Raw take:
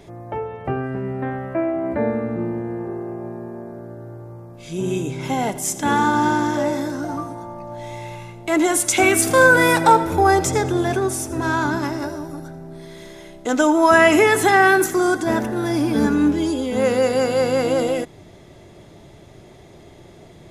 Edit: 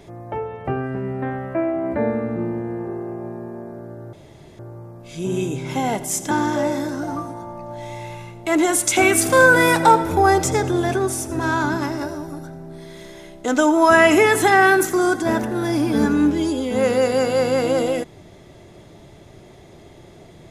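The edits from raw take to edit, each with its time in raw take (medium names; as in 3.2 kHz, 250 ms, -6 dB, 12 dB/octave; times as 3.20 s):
4.13 s: insert room tone 0.46 s
5.85–6.32 s: delete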